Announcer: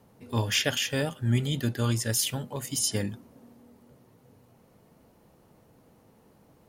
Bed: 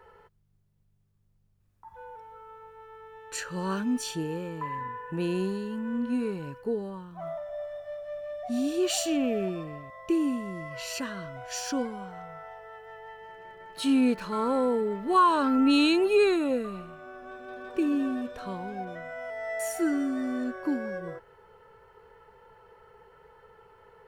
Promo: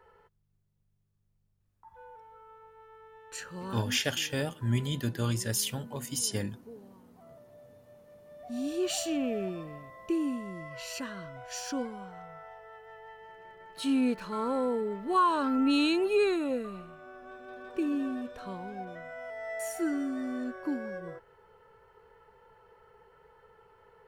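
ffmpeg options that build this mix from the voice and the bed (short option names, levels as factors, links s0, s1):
-filter_complex "[0:a]adelay=3400,volume=0.668[s0];[1:a]volume=2.82,afade=t=out:st=3.33:d=0.83:silence=0.223872,afade=t=in:st=8.26:d=0.46:silence=0.188365[s1];[s0][s1]amix=inputs=2:normalize=0"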